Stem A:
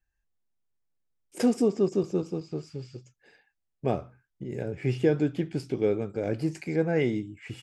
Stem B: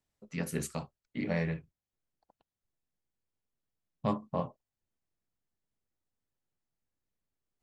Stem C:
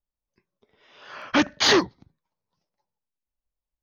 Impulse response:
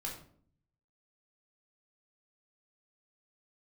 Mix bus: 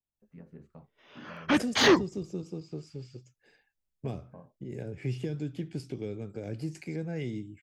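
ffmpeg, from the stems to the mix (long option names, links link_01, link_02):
-filter_complex "[0:a]acrossover=split=200|3000[link_01][link_02][link_03];[link_02]acompressor=threshold=-32dB:ratio=6[link_04];[link_01][link_04][link_03]amix=inputs=3:normalize=0,adelay=200,volume=-3dB[link_05];[1:a]lowpass=1100,acompressor=threshold=-33dB:ratio=6,volume=-10.5dB,asplit=2[link_06][link_07];[2:a]agate=range=-13dB:threshold=-59dB:ratio=16:detection=peak,equalizer=frequency=4900:width_type=o:width=0.98:gain=-8.5,acontrast=58,adelay=150,volume=1.5dB[link_08];[link_07]apad=whole_len=175371[link_09];[link_08][link_09]sidechaincompress=threshold=-53dB:ratio=5:attack=16:release=1430[link_10];[link_05][link_06][link_10]amix=inputs=3:normalize=0,equalizer=frequency=1000:width_type=o:width=2.4:gain=-3.5"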